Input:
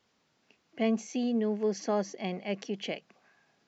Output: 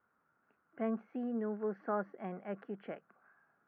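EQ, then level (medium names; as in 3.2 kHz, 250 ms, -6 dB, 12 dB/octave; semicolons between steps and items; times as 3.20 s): four-pole ladder low-pass 1.5 kHz, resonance 75%; distance through air 94 m; +4.0 dB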